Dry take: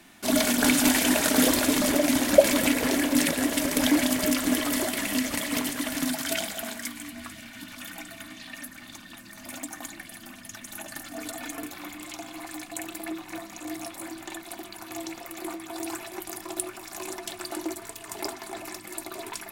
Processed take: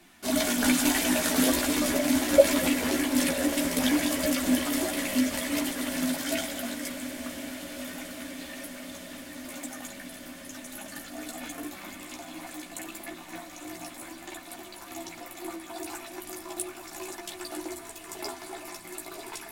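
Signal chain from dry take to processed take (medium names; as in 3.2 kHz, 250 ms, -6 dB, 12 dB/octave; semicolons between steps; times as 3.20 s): chorus voices 6, 0.35 Hz, delay 14 ms, depth 3.2 ms; echo that smears into a reverb 1064 ms, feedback 75%, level -13.5 dB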